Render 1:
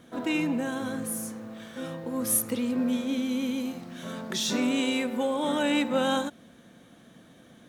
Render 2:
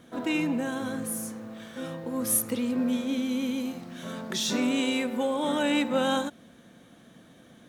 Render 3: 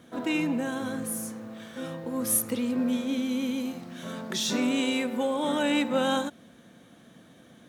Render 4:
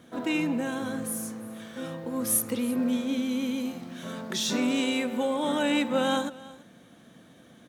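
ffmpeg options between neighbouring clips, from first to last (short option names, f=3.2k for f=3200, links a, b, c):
-af anull
-af "highpass=54"
-af "aecho=1:1:336:0.1"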